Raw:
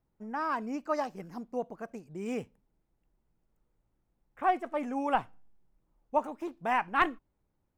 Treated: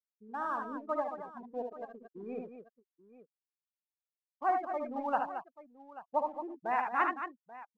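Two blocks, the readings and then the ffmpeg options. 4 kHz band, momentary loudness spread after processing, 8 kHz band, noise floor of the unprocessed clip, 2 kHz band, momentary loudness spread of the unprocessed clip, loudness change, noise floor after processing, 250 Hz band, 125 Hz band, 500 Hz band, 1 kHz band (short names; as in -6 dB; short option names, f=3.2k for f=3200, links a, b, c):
under -10 dB, 16 LU, n/a, -79 dBFS, -4.0 dB, 12 LU, -3.0 dB, under -85 dBFS, -6.5 dB, under -10 dB, -2.5 dB, -1.5 dB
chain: -filter_complex "[0:a]highpass=f=400:p=1,afftfilt=real='re*gte(hypot(re,im),0.0282)':imag='im*gte(hypot(re,im),0.0282)':win_size=1024:overlap=0.75,lowpass=1.8k,asplit=2[a][b];[b]aeval=exprs='sgn(val(0))*max(abs(val(0))-0.00596,0)':c=same,volume=-12dB[c];[a][c]amix=inputs=2:normalize=0,aecho=1:1:62|74|222|835:0.335|0.501|0.335|0.15,volume=-4dB"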